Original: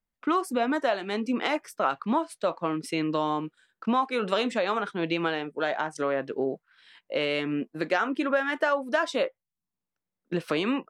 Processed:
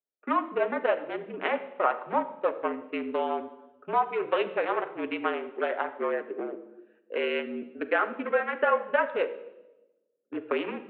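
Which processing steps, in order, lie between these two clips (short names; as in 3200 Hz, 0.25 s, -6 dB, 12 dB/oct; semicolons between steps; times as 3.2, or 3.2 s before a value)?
Wiener smoothing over 41 samples; reverb RT60 1.1 s, pre-delay 6 ms, DRR 6.5 dB; mistuned SSB -50 Hz 410–2800 Hz; gain +1.5 dB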